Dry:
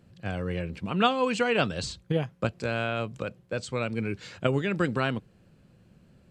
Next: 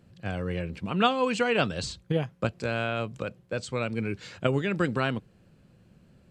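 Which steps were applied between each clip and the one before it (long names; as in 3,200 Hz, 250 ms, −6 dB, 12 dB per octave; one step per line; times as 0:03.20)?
no processing that can be heard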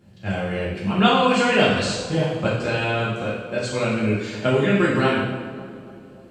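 tape delay 284 ms, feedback 66%, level −12 dB, low-pass 1,100 Hz
coupled-rooms reverb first 0.95 s, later 2.6 s, DRR −7.5 dB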